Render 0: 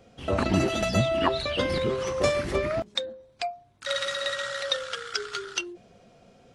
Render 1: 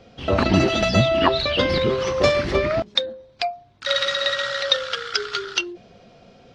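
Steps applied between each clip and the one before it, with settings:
high shelf with overshoot 6,800 Hz −13 dB, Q 1.5
level +6 dB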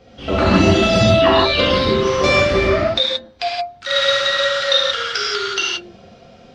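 reverb whose tail is shaped and stops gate 200 ms flat, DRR −6.5 dB
level −2 dB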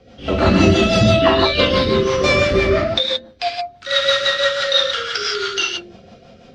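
rotating-speaker cabinet horn 6 Hz
level +2 dB

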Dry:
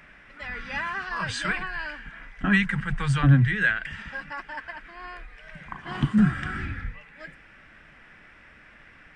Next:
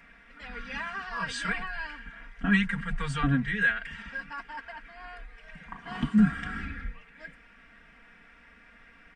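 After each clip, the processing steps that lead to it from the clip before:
comb filter 4.3 ms, depth 98%
level −6.5 dB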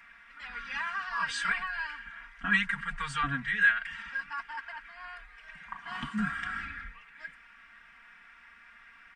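low shelf with overshoot 740 Hz −11 dB, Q 1.5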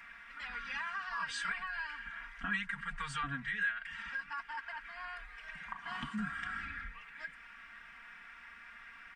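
downward compressor 2 to 1, threshold −44 dBFS, peak gain reduction 13.5 dB
level +2 dB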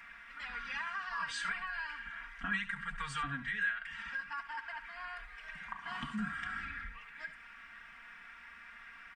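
single-tap delay 70 ms −13.5 dB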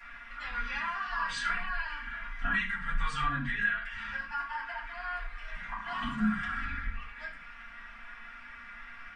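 convolution reverb RT60 0.30 s, pre-delay 4 ms, DRR −7.5 dB
level −4.5 dB

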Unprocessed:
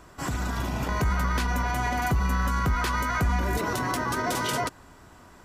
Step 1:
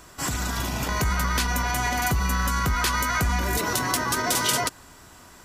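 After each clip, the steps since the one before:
high-shelf EQ 2,600 Hz +11.5 dB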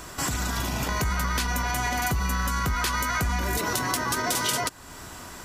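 downward compressor 2 to 1, threshold −39 dBFS, peak gain reduction 11 dB
level +7.5 dB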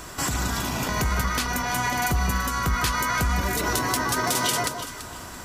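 delay that swaps between a low-pass and a high-pass 168 ms, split 1,300 Hz, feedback 52%, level −6 dB
level +1.5 dB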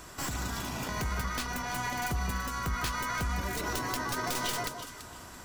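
stylus tracing distortion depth 0.081 ms
level −8.5 dB

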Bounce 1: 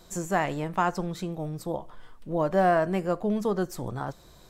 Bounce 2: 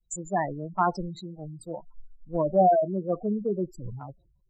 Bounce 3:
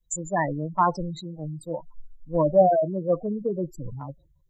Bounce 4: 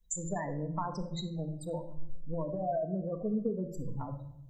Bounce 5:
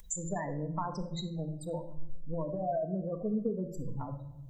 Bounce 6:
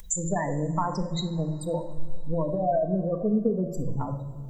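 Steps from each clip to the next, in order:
phase distortion by the signal itself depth 0.058 ms; gate on every frequency bin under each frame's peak −10 dB strong; multiband upward and downward expander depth 100%
EQ curve with evenly spaced ripples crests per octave 1.1, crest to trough 8 dB; level +2.5 dB
brickwall limiter −18.5 dBFS, peak gain reduction 11.5 dB; downward compressor 5 to 1, threshold −34 dBFS, peak gain reduction 11.5 dB; rectangular room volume 2,000 cubic metres, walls furnished, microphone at 1.6 metres
upward compression, threshold −40 dBFS
dense smooth reverb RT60 3.7 s, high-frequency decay 0.85×, DRR 17 dB; level +8 dB

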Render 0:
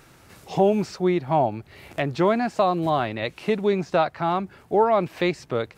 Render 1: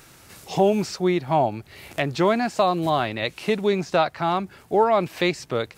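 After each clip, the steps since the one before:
high-shelf EQ 3,000 Hz +8.5 dB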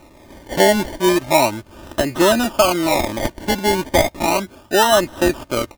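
sample-and-hold swept by an LFO 27×, swing 60% 0.35 Hz
comb filter 3.3 ms, depth 57%
level +4 dB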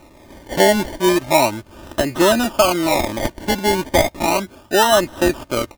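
no processing that can be heard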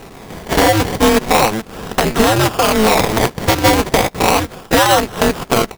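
downward compressor, threshold −18 dBFS, peak gain reduction 9.5 dB
boost into a limiter +11 dB
ring modulator with a square carrier 110 Hz
level −1 dB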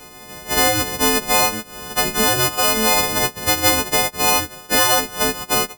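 every partial snapped to a pitch grid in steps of 3 semitones
level −8 dB

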